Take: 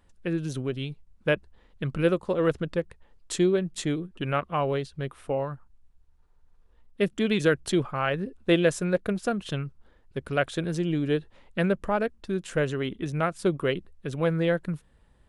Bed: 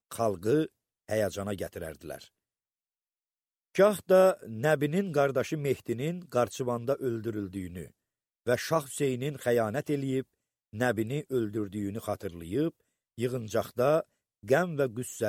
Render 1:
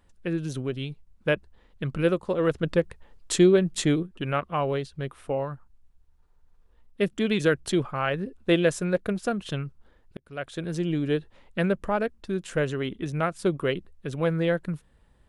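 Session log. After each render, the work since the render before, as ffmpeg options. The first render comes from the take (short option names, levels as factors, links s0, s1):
-filter_complex "[0:a]asettb=1/sr,asplit=3[s0][s1][s2];[s0]atrim=end=2.634[s3];[s1]atrim=start=2.63:end=4.03,asetpts=PTS-STARTPTS,afade=t=in:d=0.004:c=qsin,afade=t=out:st=1.396:d=0.004:c=qsin,acontrast=28[s4];[s2]atrim=start=4.026[s5];[s3][s4]acrossfade=d=0.004:c1=hsin:c2=qsin[s6];[s6][s5]acrossfade=d=0.004:c1=qsin:c2=hsin,asplit=2[s7][s8];[s7]atrim=end=10.17,asetpts=PTS-STARTPTS,afade=t=out:st=10.166:d=0.004:c=hsin[s9];[s8]atrim=start=10.17,asetpts=PTS-STARTPTS,afade=t=in:d=0.65[s10];[s9][s10]concat=n=2:v=0:a=1"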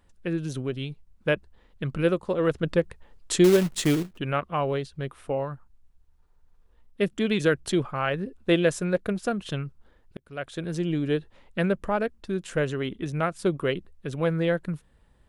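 -filter_complex "[0:a]asettb=1/sr,asplit=3[s0][s1][s2];[s0]atrim=end=3.444[s3];[s1]atrim=start=3.44:end=4.18,asetpts=PTS-STARTPTS,afade=t=in:d=0.004:c=qsin,afade=t=out:st=0.736:d=0.004:c=qsin,acrusher=bits=3:mode=log:mix=0:aa=0.000001[s4];[s2]atrim=start=4.176[s5];[s3][s4]acrossfade=d=0.004:c1=hsin:c2=qsin[s6];[s6][s5]acrossfade=d=0.004:c1=qsin:c2=hsin"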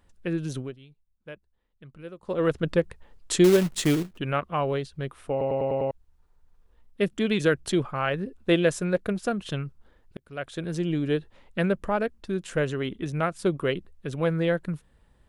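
-filter_complex "[0:a]asplit=9[s0][s1][s2][s3][s4][s5][s6][s7][s8];[s0]atrim=end=0.77,asetpts=PTS-STARTPTS,afade=t=out:st=0.56:d=0.21:silence=0.125893[s9];[s1]atrim=start=0.77:end=2.18,asetpts=PTS-STARTPTS,volume=0.126[s10];[s2]atrim=start=2.18:end=5.412,asetpts=PTS-STARTPTS,afade=t=in:d=0.21:silence=0.125893[s11];[s3]atrim=start=5.308:end=5.412[s12];[s4]atrim=start=5.308:end=5.412[s13];[s5]atrim=start=5.308:end=5.412[s14];[s6]atrim=start=5.308:end=5.412[s15];[s7]atrim=start=5.308:end=5.412[s16];[s8]atrim=start=5.908[s17];[s9][s10][s11]concat=n=3:v=0:a=1[s18];[s18][s12]acrossfade=d=0.004:c1=hsin:c2=hsin[s19];[s19][s13]acrossfade=d=0.004:c1=hsin:c2=hsin[s20];[s20][s14]acrossfade=d=0.004:c1=hsin:c2=hsin[s21];[s21][s15]acrossfade=d=0.004:c1=hsin:c2=hsin[s22];[s22][s16]acrossfade=d=0.004:c1=hsin:c2=hsin[s23];[s23][s17]acrossfade=d=0.004:c1=hsin:c2=hsin"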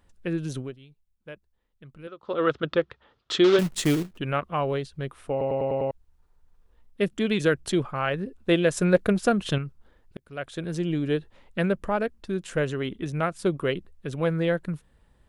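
-filter_complex "[0:a]asettb=1/sr,asplit=3[s0][s1][s2];[s0]atrim=end=2.074[s3];[s1]atrim=start=2.07:end=3.59,asetpts=PTS-STARTPTS,afade=t=in:d=0.004:c=qsin,afade=t=out:st=1.516:d=0.004:c=qsin,highpass=110,equalizer=f=180:t=q:w=4:g=-10,equalizer=f=1300:t=q:w=4:g=9,equalizer=f=3400:t=q:w=4:g=7,lowpass=f=5200:w=0.5412,lowpass=f=5200:w=1.3066[s4];[s2]atrim=start=3.586[s5];[s3][s4]acrossfade=d=0.004:c1=hsin:c2=qsin[s6];[s6][s5]acrossfade=d=0.004:c1=qsin:c2=hsin,asplit=3[s7][s8][s9];[s7]atrim=end=8.772[s10];[s8]atrim=start=8.768:end=9.582,asetpts=PTS-STARTPTS,volume=1.88[s11];[s9]atrim=start=9.578[s12];[s10][s11]acrossfade=d=0.004:c1=hsin:c2=hsin[s13];[s13][s12]acrossfade=d=0.004:c1=hsin:c2=hsin"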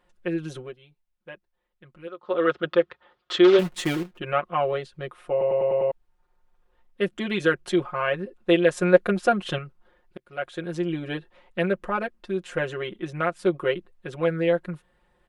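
-af "bass=f=250:g=-11,treble=f=4000:g=-9,aecho=1:1:5.6:0.94"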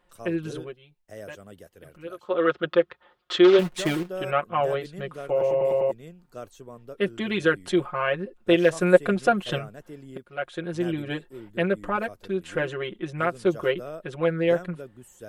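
-filter_complex "[1:a]volume=0.237[s0];[0:a][s0]amix=inputs=2:normalize=0"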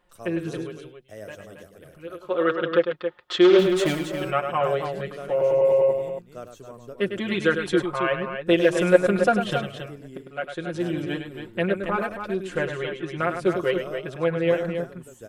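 -af "aecho=1:1:102|274.1:0.398|0.398"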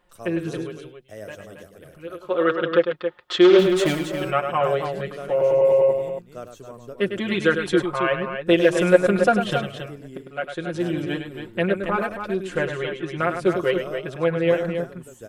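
-af "volume=1.26,alimiter=limit=0.891:level=0:latency=1"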